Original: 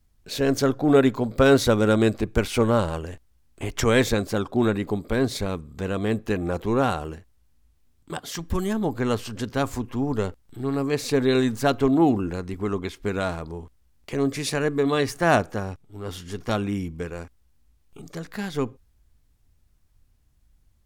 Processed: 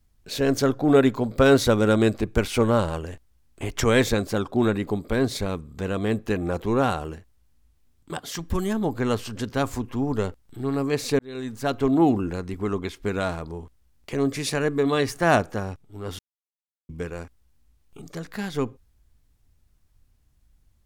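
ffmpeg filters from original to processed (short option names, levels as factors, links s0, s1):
-filter_complex "[0:a]asplit=4[s0][s1][s2][s3];[s0]atrim=end=11.19,asetpts=PTS-STARTPTS,afade=t=out:st=11.186:d=0.004:c=hsin[s4];[s1]atrim=start=11.19:end=16.19,asetpts=PTS-STARTPTS,afade=t=in:d=0.8,afade=t=out:st=4.996:d=0.004:c=hsin[s5];[s2]atrim=start=16.19:end=16.89,asetpts=PTS-STARTPTS,volume=0[s6];[s3]atrim=start=16.89,asetpts=PTS-STARTPTS,afade=t=in:d=0.004:c=hsin[s7];[s4][s5][s6][s7]concat=n=4:v=0:a=1"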